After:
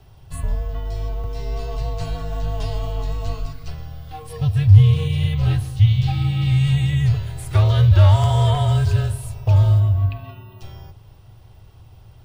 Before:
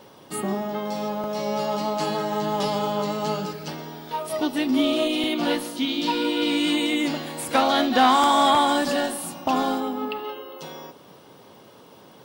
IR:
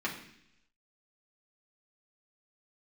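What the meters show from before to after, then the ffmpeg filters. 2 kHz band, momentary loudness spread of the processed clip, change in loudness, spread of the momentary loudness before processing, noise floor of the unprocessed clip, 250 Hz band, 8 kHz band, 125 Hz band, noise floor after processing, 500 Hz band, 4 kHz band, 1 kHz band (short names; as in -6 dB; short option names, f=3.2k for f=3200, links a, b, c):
-7.0 dB, 18 LU, +4.5 dB, 15 LU, -49 dBFS, -6.5 dB, n/a, +25.5 dB, -46 dBFS, -6.0 dB, -7.0 dB, -9.5 dB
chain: -af "afreqshift=-160,lowshelf=f=160:t=q:w=3:g=13.5,volume=-6.5dB"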